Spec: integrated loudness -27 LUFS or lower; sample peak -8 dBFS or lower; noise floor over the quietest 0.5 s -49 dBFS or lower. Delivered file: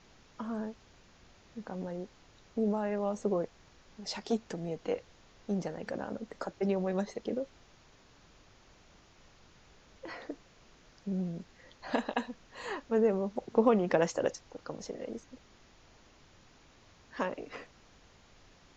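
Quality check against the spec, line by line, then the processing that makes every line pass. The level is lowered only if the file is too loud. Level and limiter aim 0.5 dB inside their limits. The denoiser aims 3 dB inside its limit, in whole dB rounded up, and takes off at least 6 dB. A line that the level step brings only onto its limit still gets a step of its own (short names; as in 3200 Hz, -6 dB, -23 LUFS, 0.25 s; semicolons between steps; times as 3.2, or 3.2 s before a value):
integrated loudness -34.5 LUFS: OK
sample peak -12.0 dBFS: OK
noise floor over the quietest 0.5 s -60 dBFS: OK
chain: none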